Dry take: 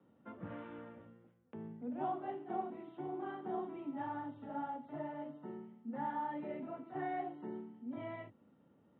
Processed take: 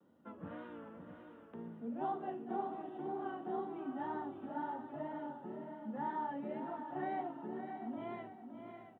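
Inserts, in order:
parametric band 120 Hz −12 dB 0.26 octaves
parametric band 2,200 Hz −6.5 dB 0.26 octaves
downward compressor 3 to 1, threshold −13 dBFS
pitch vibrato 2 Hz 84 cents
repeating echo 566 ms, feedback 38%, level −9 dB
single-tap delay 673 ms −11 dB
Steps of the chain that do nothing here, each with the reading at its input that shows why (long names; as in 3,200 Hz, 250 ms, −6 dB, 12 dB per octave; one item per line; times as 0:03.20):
downward compressor, threshold −13 dBFS: peak of its input −26.5 dBFS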